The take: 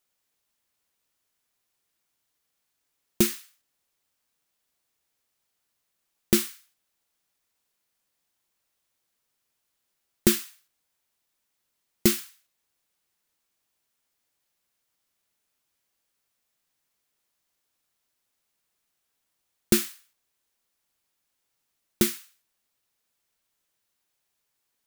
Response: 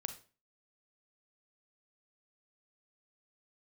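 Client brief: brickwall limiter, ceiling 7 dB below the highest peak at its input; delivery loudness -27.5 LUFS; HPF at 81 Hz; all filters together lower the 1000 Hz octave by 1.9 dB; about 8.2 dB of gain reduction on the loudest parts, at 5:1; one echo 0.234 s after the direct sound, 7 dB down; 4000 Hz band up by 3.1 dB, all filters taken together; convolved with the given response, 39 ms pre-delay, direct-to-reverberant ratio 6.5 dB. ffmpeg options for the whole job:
-filter_complex "[0:a]highpass=81,equalizer=f=1k:t=o:g=-3,equalizer=f=4k:t=o:g=4,acompressor=threshold=-24dB:ratio=5,alimiter=limit=-14dB:level=0:latency=1,aecho=1:1:234:0.447,asplit=2[a][b];[1:a]atrim=start_sample=2205,adelay=39[c];[b][c]afir=irnorm=-1:irlink=0,volume=-5dB[d];[a][d]amix=inputs=2:normalize=0,volume=8.5dB"

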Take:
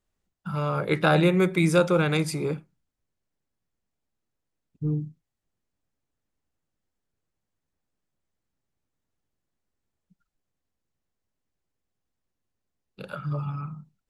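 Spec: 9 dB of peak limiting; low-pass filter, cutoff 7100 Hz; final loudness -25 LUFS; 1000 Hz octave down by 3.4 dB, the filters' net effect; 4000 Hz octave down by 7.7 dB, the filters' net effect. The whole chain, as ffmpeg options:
-af "lowpass=7.1k,equalizer=f=1k:t=o:g=-4.5,equalizer=f=4k:t=o:g=-8.5,volume=3.5dB,alimiter=limit=-13.5dB:level=0:latency=1"

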